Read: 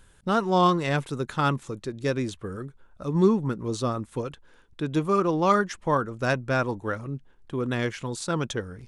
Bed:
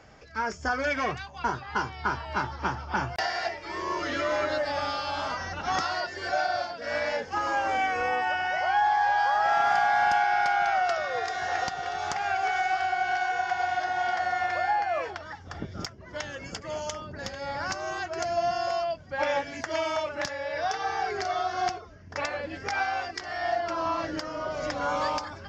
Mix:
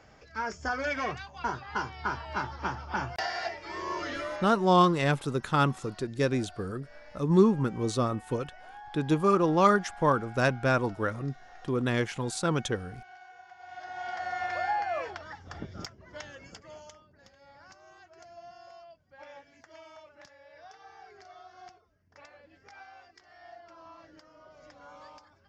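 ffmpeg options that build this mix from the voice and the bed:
-filter_complex "[0:a]adelay=4150,volume=-0.5dB[a];[1:a]volume=16.5dB,afade=t=out:st=4.01:d=0.59:silence=0.1,afade=t=in:st=13.6:d=1.01:silence=0.1,afade=t=out:st=15.54:d=1.54:silence=0.11885[b];[a][b]amix=inputs=2:normalize=0"

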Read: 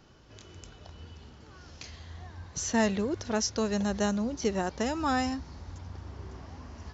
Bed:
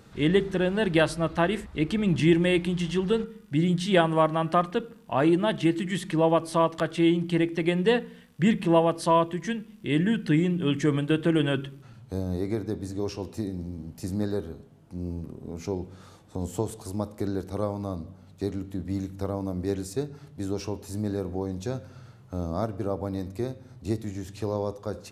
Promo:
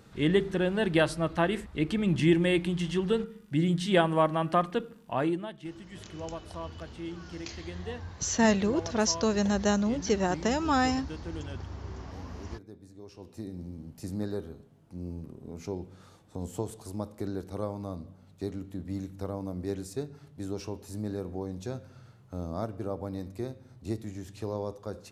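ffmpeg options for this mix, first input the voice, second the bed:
-filter_complex "[0:a]adelay=5650,volume=2.5dB[a];[1:a]volume=10dB,afade=t=out:st=5.04:d=0.48:silence=0.177828,afade=t=in:st=13.08:d=0.59:silence=0.237137[b];[a][b]amix=inputs=2:normalize=0"

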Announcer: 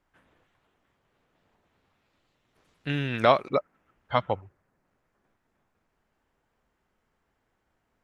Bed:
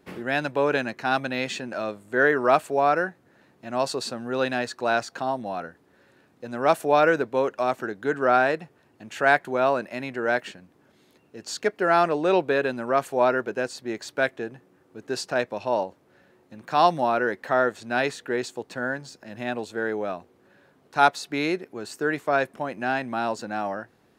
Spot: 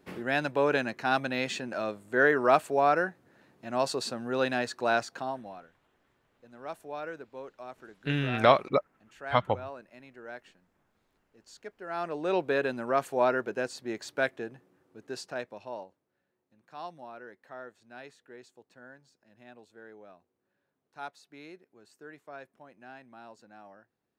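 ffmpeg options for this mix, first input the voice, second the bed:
-filter_complex "[0:a]adelay=5200,volume=-0.5dB[a];[1:a]volume=12dB,afade=t=out:st=4.95:d=0.7:silence=0.149624,afade=t=in:st=11.86:d=0.7:silence=0.177828,afade=t=out:st=14.2:d=1.89:silence=0.125893[b];[a][b]amix=inputs=2:normalize=0"

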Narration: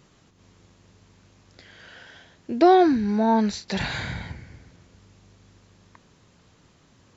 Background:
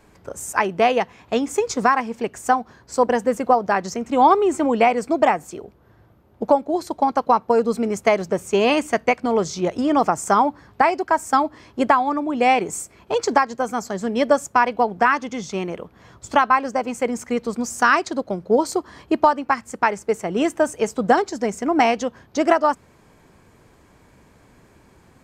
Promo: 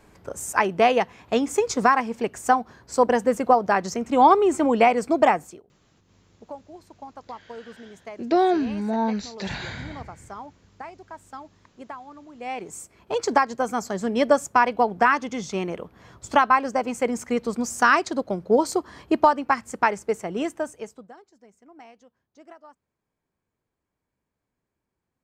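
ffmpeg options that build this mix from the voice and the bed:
-filter_complex "[0:a]adelay=5700,volume=-4dB[a];[1:a]volume=19.5dB,afade=t=out:st=5.37:d=0.26:silence=0.0891251,afade=t=in:st=12.37:d=1.12:silence=0.0944061,afade=t=out:st=19.82:d=1.27:silence=0.0354813[b];[a][b]amix=inputs=2:normalize=0"

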